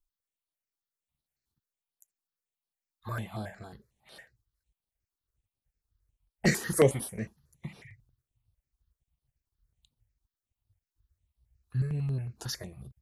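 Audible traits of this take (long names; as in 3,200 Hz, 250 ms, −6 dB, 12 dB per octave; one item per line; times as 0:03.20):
notches that jump at a steady rate 11 Hz 560–6,900 Hz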